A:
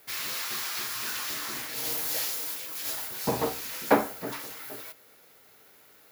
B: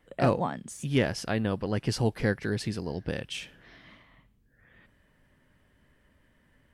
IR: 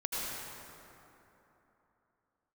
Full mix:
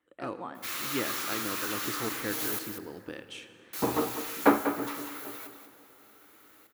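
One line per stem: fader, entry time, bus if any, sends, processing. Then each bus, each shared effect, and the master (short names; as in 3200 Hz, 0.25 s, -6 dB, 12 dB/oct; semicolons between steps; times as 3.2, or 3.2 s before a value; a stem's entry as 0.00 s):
-2.5 dB, 0.55 s, muted 2.59–3.73, send -20.5 dB, echo send -8.5 dB, dry
-13.0 dB, 0.00 s, send -14.5 dB, no echo send, HPF 360 Hz 6 dB/oct; AGC gain up to 5 dB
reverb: on, RT60 3.3 s, pre-delay 73 ms
echo: echo 0.194 s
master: thirty-one-band EQ 160 Hz -6 dB, 315 Hz +10 dB, 630 Hz -3 dB, 1250 Hz +7 dB, 5000 Hz -5 dB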